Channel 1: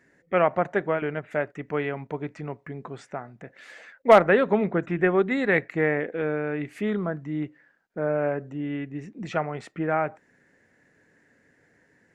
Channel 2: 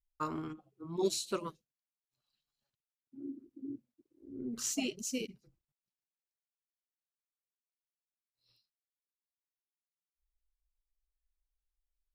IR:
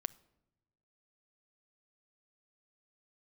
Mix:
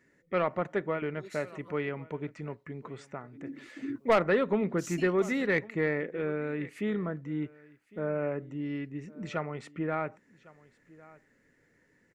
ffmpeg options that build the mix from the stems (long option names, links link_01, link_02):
-filter_complex "[0:a]bandreject=frequency=1600:width=11,volume=-4dB,asplit=3[link_01][link_02][link_03];[link_02]volume=-22.5dB[link_04];[1:a]dynaudnorm=framelen=680:gausssize=7:maxgain=13dB,adelay=200,volume=-5.5dB[link_05];[link_03]apad=whole_len=544275[link_06];[link_05][link_06]sidechaincompress=threshold=-39dB:ratio=6:attack=7.3:release=884[link_07];[link_04]aecho=0:1:1105:1[link_08];[link_01][link_07][link_08]amix=inputs=3:normalize=0,equalizer=frequency=730:width_type=o:width=0.45:gain=-7.5,asoftclip=type=tanh:threshold=-15dB"